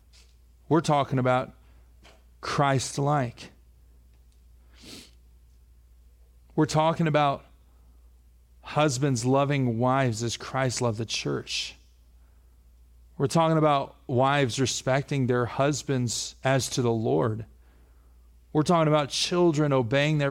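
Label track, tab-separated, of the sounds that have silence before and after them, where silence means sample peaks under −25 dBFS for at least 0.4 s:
0.710000	1.430000	sound
2.450000	3.260000	sound
6.580000	7.350000	sound
8.760000	11.630000	sound
13.200000	17.340000	sound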